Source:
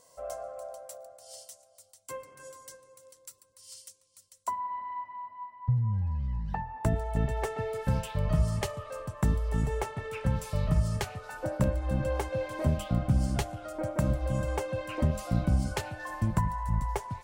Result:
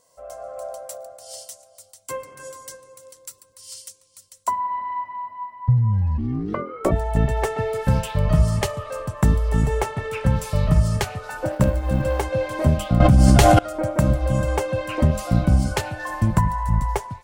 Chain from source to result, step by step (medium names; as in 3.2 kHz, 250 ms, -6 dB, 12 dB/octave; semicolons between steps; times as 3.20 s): 11.45–12.23 s: companding laws mixed up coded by A; level rider gain up to 11.5 dB; 6.17–6.90 s: ring modulator 150 Hz -> 490 Hz; 13.00–13.59 s: level flattener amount 100%; trim -2 dB